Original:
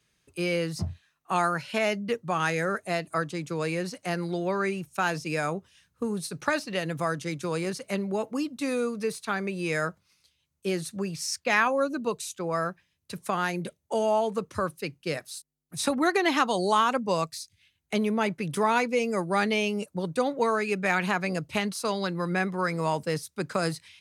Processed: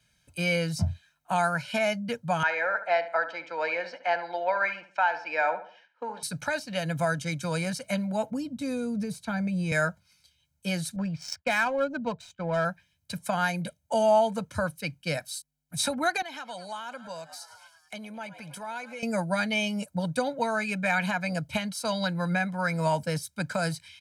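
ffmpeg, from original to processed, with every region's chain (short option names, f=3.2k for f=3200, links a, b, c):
-filter_complex "[0:a]asettb=1/sr,asplit=3[a][b][c];[a]atrim=end=2.434[d];[b]atrim=start=2.43:end=6.23,asetpts=PTS-STARTPTS,afade=t=in:d=0.004:c=qsin,afade=t=out:st=3.796:d=0.004:c=qsin,highpass=f=380:w=0.5412,highpass=f=380:w=1.3066,equalizer=f=870:t=q:w=4:g=9,equalizer=f=1.9k:t=q:w=4:g=6,equalizer=f=3.7k:t=q:w=4:g=-6,lowpass=f=4.1k:w=0.5412,lowpass=f=4.1k:w=1.3066,asplit=2[e][f];[f]adelay=71,lowpass=f=2.6k:p=1,volume=-11.5dB,asplit=2[g][h];[h]adelay=71,lowpass=f=2.6k:p=1,volume=0.38,asplit=2[i][j];[j]adelay=71,lowpass=f=2.6k:p=1,volume=0.38,asplit=2[k][l];[l]adelay=71,lowpass=f=2.6k:p=1,volume=0.38[m];[e][g][i][k][m]amix=inputs=5:normalize=0,atrim=end_sample=167580[n];[c]atrim=start=6.226[o];[d][n]acrossfade=d=0.004:c1=hsin:c2=qsin[p];[p][o]acrossfade=d=0.004:c1=qsin:c2=hsin,asettb=1/sr,asplit=3[q][r][s];[q]atrim=end=8.304[t];[r]atrim=start=8.3:end=9.72,asetpts=PTS-STARTPTS,afade=t=in:d=0.004:c=qsin,afade=t=out:st=1.416:d=0.004:c=qsin,tiltshelf=f=650:g=7.5,acrossover=split=130|3000[u][v][w];[v]acompressor=threshold=-29dB:ratio=3:attack=3.2:release=140:knee=2.83:detection=peak[x];[u][x][w]amix=inputs=3:normalize=0[y];[s]atrim=start=9.716[z];[t][y]acrossfade=d=0.004:c1=hsin:c2=qsin[aa];[aa][z]acrossfade=d=0.004:c1=qsin:c2=hsin,asettb=1/sr,asplit=3[ab][ac][ad];[ab]atrim=end=10.964[ae];[ac]atrim=start=10.96:end=12.65,asetpts=PTS-STARTPTS,afade=t=in:d=0.004:c=qsin,afade=t=out:st=1.686:d=0.004:c=qsin,agate=range=-33dB:threshold=-46dB:ratio=3:release=100:detection=peak,adynamicsmooth=sensitivity=3.5:basefreq=1.7k[af];[ad]atrim=start=12.646[ag];[ae][af]acrossfade=d=0.004:c1=hsin:c2=qsin[ah];[ah][ag]acrossfade=d=0.004:c1=qsin:c2=hsin,asettb=1/sr,asplit=3[ai][aj][ak];[ai]atrim=end=16.224[al];[aj]atrim=start=16.22:end=19.03,asetpts=PTS-STARTPTS,afade=t=in:d=0.004:c=qsin,afade=t=out:st=2.806:d=0.004:c=qsin,highpass=f=350:p=1,asplit=7[am][an][ao][ap][aq][ar][as];[an]adelay=107,afreqshift=100,volume=-20.5dB[at];[ao]adelay=214,afreqshift=200,volume=-24.4dB[au];[ap]adelay=321,afreqshift=300,volume=-28.3dB[av];[aq]adelay=428,afreqshift=400,volume=-32.1dB[aw];[ar]adelay=535,afreqshift=500,volume=-36dB[ax];[as]adelay=642,afreqshift=600,volume=-39.9dB[ay];[am][at][au][av][aw][ax][ay]amix=inputs=7:normalize=0,atrim=end_sample=123921,acompressor=threshold=-47dB:ratio=2:attack=3.2:release=140:knee=1:detection=peak[az];[ak]atrim=start=19.026[ba];[al][az]acrossfade=d=0.004:c1=hsin:c2=qsin[bb];[bb][ba]acrossfade=d=0.004:c1=qsin:c2=hsin,alimiter=limit=-16dB:level=0:latency=1:release=482,bandreject=f=800:w=12,aecho=1:1:1.3:0.92"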